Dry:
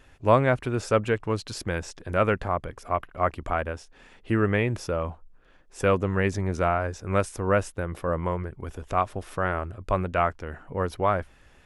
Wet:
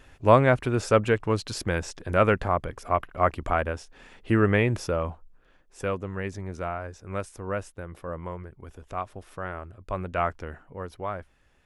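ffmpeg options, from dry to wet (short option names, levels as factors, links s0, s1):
-af "volume=2.99,afade=t=out:st=4.73:d=1.24:silence=0.316228,afade=t=in:st=9.85:d=0.58:silence=0.421697,afade=t=out:st=10.43:d=0.24:silence=0.375837"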